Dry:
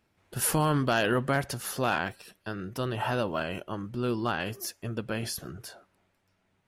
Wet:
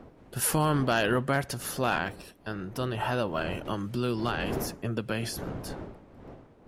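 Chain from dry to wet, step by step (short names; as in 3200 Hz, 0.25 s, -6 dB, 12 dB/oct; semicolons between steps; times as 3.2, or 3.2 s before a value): wind noise 440 Hz -42 dBFS; 3.65–5.44 three-band squash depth 70%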